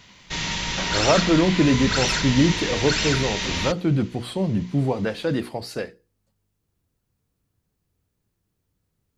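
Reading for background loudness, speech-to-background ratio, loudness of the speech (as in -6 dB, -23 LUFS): -24.0 LUFS, 1.0 dB, -23.0 LUFS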